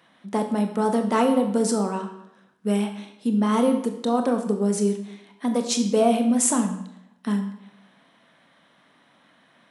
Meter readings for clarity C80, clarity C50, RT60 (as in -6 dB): 10.5 dB, 8.5 dB, 0.80 s